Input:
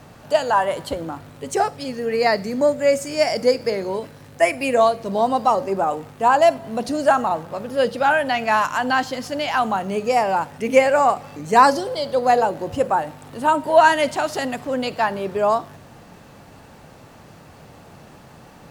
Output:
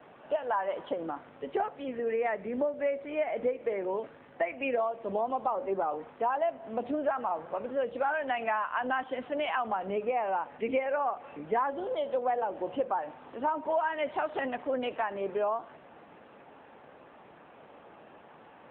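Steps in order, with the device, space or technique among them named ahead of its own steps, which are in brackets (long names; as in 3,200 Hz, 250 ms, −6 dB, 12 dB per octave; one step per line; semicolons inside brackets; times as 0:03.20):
voicemail (band-pass filter 310–2,900 Hz; downward compressor 6 to 1, threshold −22 dBFS, peak gain reduction 13.5 dB; level −4 dB; AMR narrowband 7.95 kbit/s 8,000 Hz)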